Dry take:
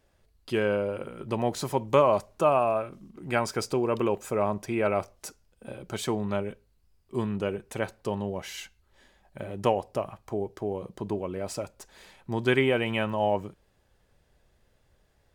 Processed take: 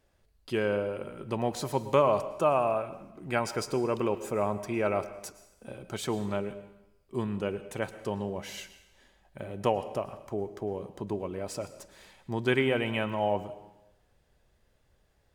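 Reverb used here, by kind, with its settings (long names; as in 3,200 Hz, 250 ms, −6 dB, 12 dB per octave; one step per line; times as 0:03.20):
dense smooth reverb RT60 0.91 s, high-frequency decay 1×, pre-delay 95 ms, DRR 13 dB
level −2.5 dB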